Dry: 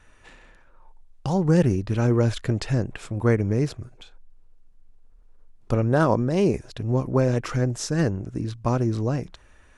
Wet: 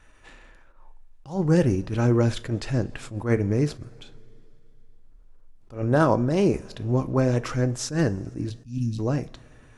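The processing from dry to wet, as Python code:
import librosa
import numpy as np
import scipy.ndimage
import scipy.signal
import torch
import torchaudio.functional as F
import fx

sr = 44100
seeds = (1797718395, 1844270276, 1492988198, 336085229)

y = fx.cheby1_bandstop(x, sr, low_hz=270.0, high_hz=2600.0, order=5, at=(8.49, 8.98), fade=0.02)
y = fx.rev_double_slope(y, sr, seeds[0], early_s=0.26, late_s=2.9, knee_db=-21, drr_db=11.5)
y = fx.attack_slew(y, sr, db_per_s=170.0)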